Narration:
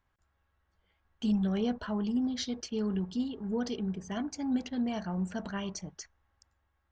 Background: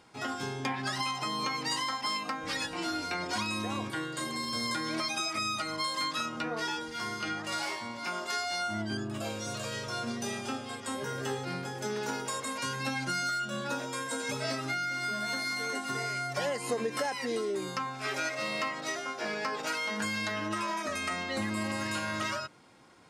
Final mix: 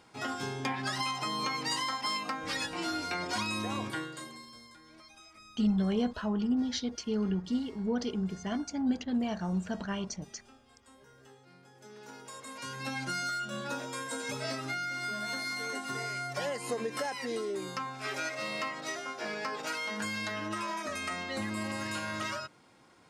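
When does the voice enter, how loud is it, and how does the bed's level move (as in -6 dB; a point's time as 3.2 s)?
4.35 s, +1.0 dB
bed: 3.95 s -0.5 dB
4.7 s -22.5 dB
11.51 s -22.5 dB
12.98 s -2.5 dB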